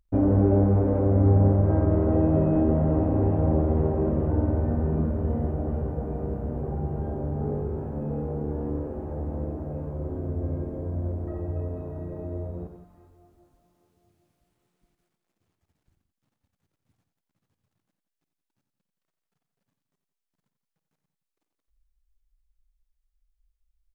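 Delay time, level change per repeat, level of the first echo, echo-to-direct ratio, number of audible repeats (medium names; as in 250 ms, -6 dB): 54 ms, no regular repeats, -13.0 dB, -6.5 dB, 3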